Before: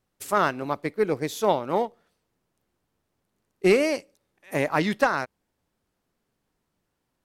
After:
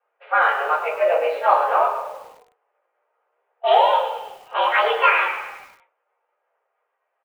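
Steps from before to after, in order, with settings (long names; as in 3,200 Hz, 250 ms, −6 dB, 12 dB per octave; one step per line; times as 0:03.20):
pitch glide at a constant tempo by +11 semitones starting unshifted
in parallel at −1 dB: brickwall limiter −18 dBFS, peak gain reduction 9 dB
on the sum: log-companded quantiser 6 bits
low-pass that shuts in the quiet parts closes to 1,400 Hz, open at −15.5 dBFS
on a send: echo with shifted repeats 114 ms, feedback 49%, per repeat −47 Hz, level −10 dB
on the sum: rectangular room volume 140 cubic metres, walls furnished, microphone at 3.2 metres
single-sideband voice off tune +140 Hz 370–2,900 Hz
feedback echo at a low word length 100 ms, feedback 55%, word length 6 bits, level −13.5 dB
level −4 dB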